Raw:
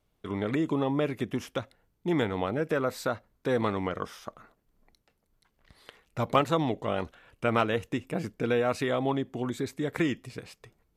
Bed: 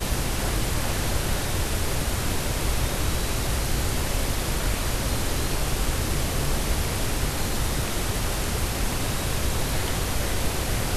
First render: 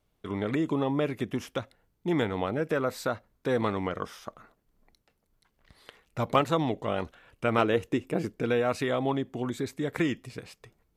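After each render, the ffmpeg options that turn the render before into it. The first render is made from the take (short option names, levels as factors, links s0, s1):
-filter_complex "[0:a]asettb=1/sr,asplit=3[s0][s1][s2];[s0]atrim=end=7.584[s3];[s1]atrim=start=7.58:end=8.41,asetpts=PTS-STARTPTS,afade=t=in:d=0.004:c=qsin,afade=t=out:st=0.826:d=0.004:c=qsin,equalizer=f=370:w=1.7:g=6.5[s4];[s2]atrim=start=8.406[s5];[s3][s4]acrossfade=d=0.004:c1=hsin:c2=qsin[s6];[s6][s5]acrossfade=d=0.004:c1=qsin:c2=hsin"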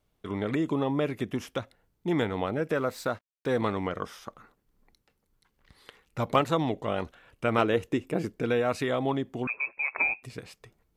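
-filter_complex "[0:a]asettb=1/sr,asplit=3[s0][s1][s2];[s0]atrim=end=2.774[s3];[s1]atrim=start=2.77:end=3.58,asetpts=PTS-STARTPTS,afade=t=in:d=0.004:c=qsin,afade=t=out:st=0.806:d=0.004:c=qsin,aeval=exprs='sgn(val(0))*max(abs(val(0))-0.00178,0)':c=same[s4];[s2]atrim=start=3.576[s5];[s3][s4]acrossfade=d=0.004:c1=hsin:c2=qsin[s6];[s6][s5]acrossfade=d=0.004:c1=qsin:c2=hsin,asettb=1/sr,asplit=3[s7][s8][s9];[s7]atrim=end=4.244[s10];[s8]atrim=start=4.24:end=6.2,asetpts=PTS-STARTPTS,afade=t=in:d=0.004:c=qsin,afade=t=out:st=1.956:d=0.004:c=qsin,bandreject=f=650:w=5.8[s11];[s9]atrim=start=6.196[s12];[s10][s11]acrossfade=d=0.004:c1=hsin:c2=qsin[s13];[s13][s12]acrossfade=d=0.004:c1=qsin:c2=hsin,asettb=1/sr,asplit=3[s14][s15][s16];[s14]atrim=end=9.474[s17];[s15]atrim=start=9.47:end=10.23,asetpts=PTS-STARTPTS,afade=t=in:d=0.004:c=qsin,afade=t=out:st=0.756:d=0.004:c=qsin,lowpass=f=2300:t=q:w=0.5098,lowpass=f=2300:t=q:w=0.6013,lowpass=f=2300:t=q:w=0.9,lowpass=f=2300:t=q:w=2.563,afreqshift=-2700[s18];[s16]atrim=start=10.226[s19];[s17][s18]acrossfade=d=0.004:c1=hsin:c2=qsin[s20];[s20][s19]acrossfade=d=0.004:c1=qsin:c2=hsin"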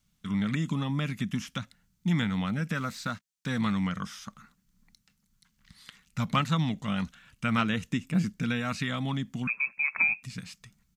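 -filter_complex "[0:a]acrossover=split=4300[s0][s1];[s1]acompressor=threshold=0.002:ratio=4:attack=1:release=60[s2];[s0][s2]amix=inputs=2:normalize=0,firequalizer=gain_entry='entry(100,0);entry(190,10);entry(360,-17);entry(1300,0);entry(6500,11);entry(11000,4)':delay=0.05:min_phase=1"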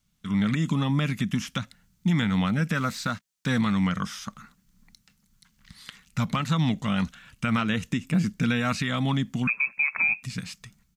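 -af "dynaudnorm=f=130:g=5:m=2,alimiter=limit=0.168:level=0:latency=1:release=139"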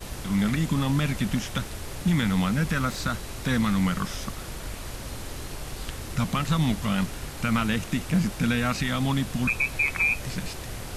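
-filter_complex "[1:a]volume=0.299[s0];[0:a][s0]amix=inputs=2:normalize=0"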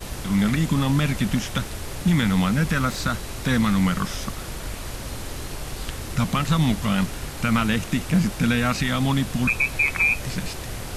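-af "volume=1.5"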